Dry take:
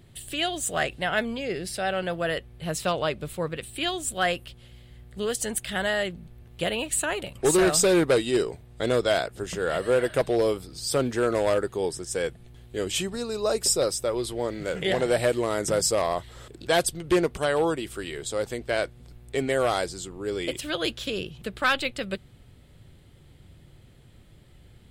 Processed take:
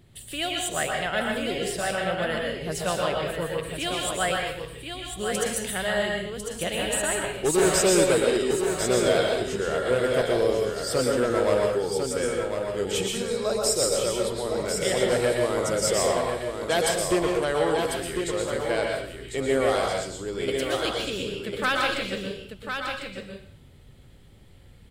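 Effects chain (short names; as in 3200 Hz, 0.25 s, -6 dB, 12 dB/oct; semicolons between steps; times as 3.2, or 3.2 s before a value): on a send: echo 1.049 s -6.5 dB; on the sum: plate-style reverb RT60 0.57 s, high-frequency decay 1×, pre-delay 0.105 s, DRR 0 dB; gain -2.5 dB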